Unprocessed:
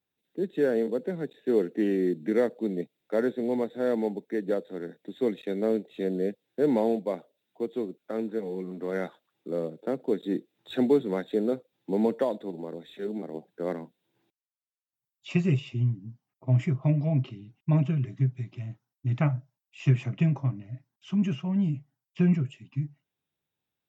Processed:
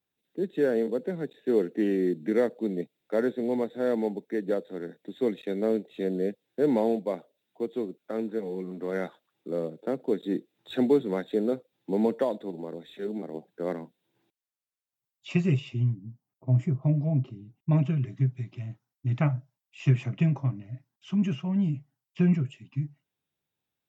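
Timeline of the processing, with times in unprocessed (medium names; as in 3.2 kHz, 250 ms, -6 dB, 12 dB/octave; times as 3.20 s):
15.94–17.71 s: peaking EQ 2.8 kHz -11 dB 2.7 oct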